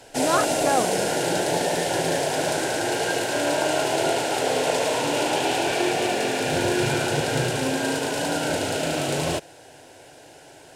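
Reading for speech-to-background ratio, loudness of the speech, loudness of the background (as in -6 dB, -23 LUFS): -3.0 dB, -26.5 LUFS, -23.5 LUFS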